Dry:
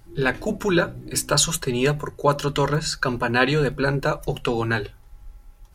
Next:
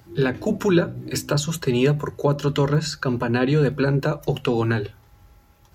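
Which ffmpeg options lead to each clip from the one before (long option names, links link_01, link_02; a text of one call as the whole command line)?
ffmpeg -i in.wav -filter_complex "[0:a]highpass=frequency=66:width=0.5412,highpass=frequency=66:width=1.3066,equalizer=frequency=9300:width=4.9:gain=-15,acrossover=split=450[link_01][link_02];[link_02]acompressor=threshold=-30dB:ratio=6[link_03];[link_01][link_03]amix=inputs=2:normalize=0,volume=4dB" out.wav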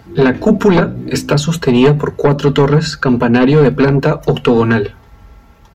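ffmpeg -i in.wav -af "lowpass=frequency=2800:poles=1,aeval=exprs='0.531*sin(PI/2*2.24*val(0)/0.531)':channel_layout=same,aecho=1:1:4.4:0.42,volume=1dB" out.wav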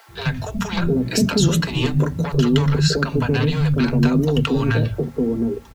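ffmpeg -i in.wav -filter_complex "[0:a]acrossover=split=210|3000[link_01][link_02][link_03];[link_02]acompressor=threshold=-21dB:ratio=5[link_04];[link_01][link_04][link_03]amix=inputs=3:normalize=0,acrusher=bits=8:mix=0:aa=0.000001,acrossover=split=170|610[link_05][link_06][link_07];[link_05]adelay=80[link_08];[link_06]adelay=710[link_09];[link_08][link_09][link_07]amix=inputs=3:normalize=0" out.wav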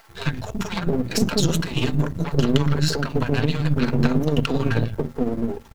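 ffmpeg -i in.wav -af "aeval=exprs='if(lt(val(0),0),0.251*val(0),val(0))':channel_layout=same,tremolo=f=18:d=0.46,volume=2dB" out.wav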